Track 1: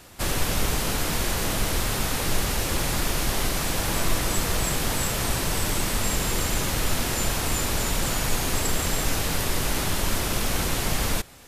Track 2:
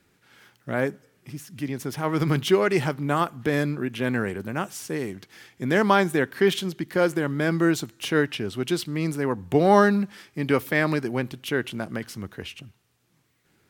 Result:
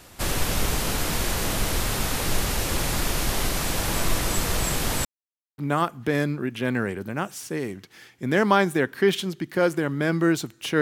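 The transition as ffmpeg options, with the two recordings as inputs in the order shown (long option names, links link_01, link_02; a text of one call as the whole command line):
ffmpeg -i cue0.wav -i cue1.wav -filter_complex "[0:a]apad=whole_dur=10.81,atrim=end=10.81,asplit=2[link_01][link_02];[link_01]atrim=end=5.05,asetpts=PTS-STARTPTS,afade=type=out:start_time=5.046:duration=0.004:curve=hsin[link_03];[link_02]atrim=start=5.05:end=5.58,asetpts=PTS-STARTPTS,volume=0[link_04];[1:a]atrim=start=2.97:end=8.2,asetpts=PTS-STARTPTS,afade=type=in:duration=0.004:curve=hsin[link_05];[link_03][link_04][link_05]concat=n=3:v=0:a=1" out.wav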